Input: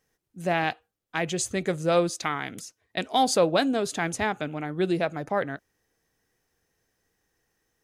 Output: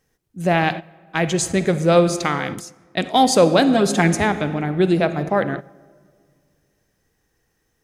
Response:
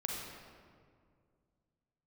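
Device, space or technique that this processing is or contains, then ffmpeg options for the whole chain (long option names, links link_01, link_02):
keyed gated reverb: -filter_complex "[0:a]asettb=1/sr,asplit=3[link_01][link_02][link_03];[link_01]atrim=end=3.744[link_04];[link_02]atrim=start=3.74:end=4.15,asetpts=PTS-STARTPTS,afade=type=in:duration=0.004:curve=qsin,afade=type=out:start_time=0.406:duration=0.004:curve=qsin,aecho=1:1:5.6:0.86,atrim=end_sample=18081[link_05];[link_03]atrim=start=4.146[link_06];[link_04][link_05]acrossfade=duration=0.004:curve1=hsin:curve2=qsin[link_07];[link_07][link_06]acrossfade=duration=0.004:curve1=qsin:curve2=hsin,lowshelf=frequency=280:gain=6,asplit=3[link_08][link_09][link_10];[1:a]atrim=start_sample=2205[link_11];[link_09][link_11]afir=irnorm=-1:irlink=0[link_12];[link_10]apad=whole_len=345353[link_13];[link_12][link_13]sidechaingate=range=-13dB:threshold=-35dB:ratio=16:detection=peak,volume=-8.5dB[link_14];[link_08][link_14]amix=inputs=2:normalize=0,volume=3.5dB"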